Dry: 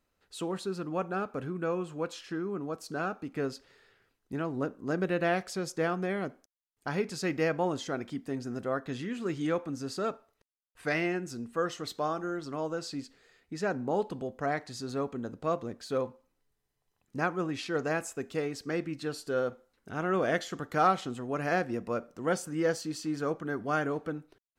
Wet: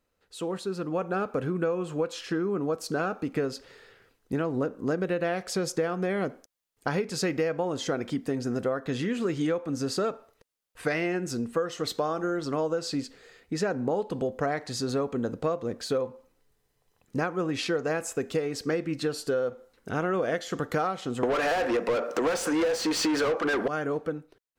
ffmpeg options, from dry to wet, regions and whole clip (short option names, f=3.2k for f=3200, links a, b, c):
-filter_complex "[0:a]asettb=1/sr,asplit=3[a][b][c];[a]atrim=end=21.234[d];[b]atrim=start=21.23:end=23.68,asetpts=PTS-STARTPTS,afade=t=in:d=0.004:c=qsin,afade=t=out:st=2.446:d=0.004:c=qsin,highpass=280,asplit=2[e][f];[f]highpass=f=720:p=1,volume=34dB,asoftclip=type=tanh:threshold=-14dB[g];[e][g]amix=inputs=2:normalize=0,lowpass=f=2.8k:p=1,volume=-6dB[h];[c]atrim=start=23.676[i];[d][h]acrossfade=d=0.004:c1=hsin:c2=qsin[j];[j][i]acrossfade=d=0.004:c1=qsin:c2=hsin,dynaudnorm=f=190:g=11:m=8.5dB,equalizer=f=490:t=o:w=0.32:g=6,acompressor=threshold=-24dB:ratio=12"